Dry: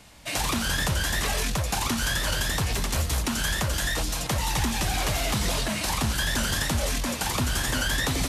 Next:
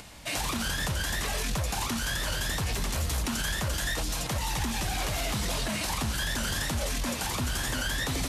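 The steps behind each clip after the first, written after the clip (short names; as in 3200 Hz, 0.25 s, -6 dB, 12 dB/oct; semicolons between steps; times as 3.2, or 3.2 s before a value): upward compressor, threshold -42 dBFS; limiter -21.5 dBFS, peak gain reduction 7 dB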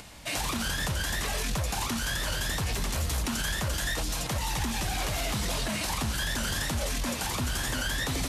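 nothing audible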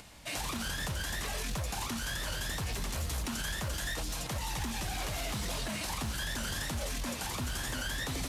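modulation noise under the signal 32 dB; gain -5.5 dB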